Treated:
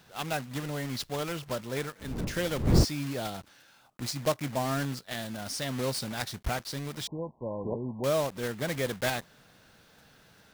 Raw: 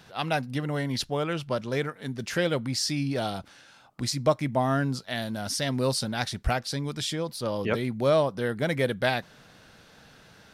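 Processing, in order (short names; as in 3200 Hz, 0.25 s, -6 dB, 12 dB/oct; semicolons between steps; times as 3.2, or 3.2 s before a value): block floating point 3-bit; 1.99–2.83 wind noise 210 Hz -23 dBFS; 7.07–8.04 brick-wall FIR low-pass 1100 Hz; gain -5.5 dB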